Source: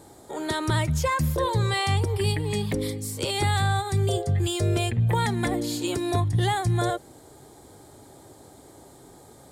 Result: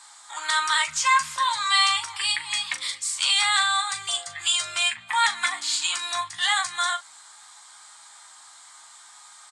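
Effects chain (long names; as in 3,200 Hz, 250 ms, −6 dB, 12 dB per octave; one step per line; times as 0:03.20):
elliptic band-pass filter 1,100–8,300 Hz, stop band 40 dB
ambience of single reflections 13 ms −8 dB, 40 ms −10.5 dB
level +9 dB
Ogg Vorbis 48 kbit/s 32,000 Hz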